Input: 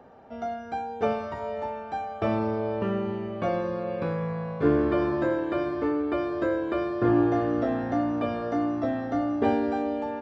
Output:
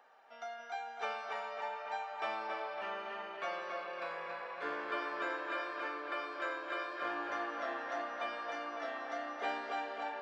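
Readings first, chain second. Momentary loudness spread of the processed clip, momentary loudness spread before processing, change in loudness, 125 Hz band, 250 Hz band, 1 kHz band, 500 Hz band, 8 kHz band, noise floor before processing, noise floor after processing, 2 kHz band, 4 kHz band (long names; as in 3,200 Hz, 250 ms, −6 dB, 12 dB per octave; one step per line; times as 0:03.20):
4 LU, 9 LU, −12.0 dB, below −35 dB, −25.0 dB, −6.5 dB, −15.0 dB, can't be measured, −39 dBFS, −49 dBFS, −1.0 dB, 0.0 dB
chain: high-pass filter 1,300 Hz 12 dB per octave
on a send: tape delay 278 ms, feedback 69%, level −3 dB, low-pass 4,200 Hz
on the sum: level −1.5 dB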